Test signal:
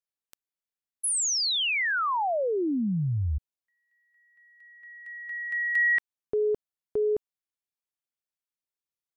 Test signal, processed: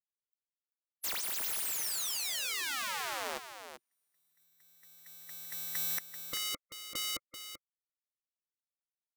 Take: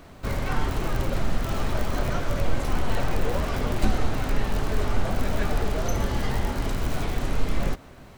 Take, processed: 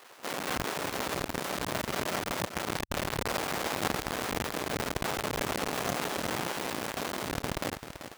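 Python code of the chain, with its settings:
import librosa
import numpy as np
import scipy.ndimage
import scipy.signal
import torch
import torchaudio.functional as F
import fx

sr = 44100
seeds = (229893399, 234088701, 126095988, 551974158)

p1 = fx.halfwave_hold(x, sr)
p2 = fx.spec_gate(p1, sr, threshold_db=-15, keep='weak')
p3 = fx.low_shelf(p2, sr, hz=230.0, db=-10.0)
p4 = p3 + fx.echo_single(p3, sr, ms=387, db=-10.0, dry=0)
y = p4 * 10.0 ** (-3.0 / 20.0)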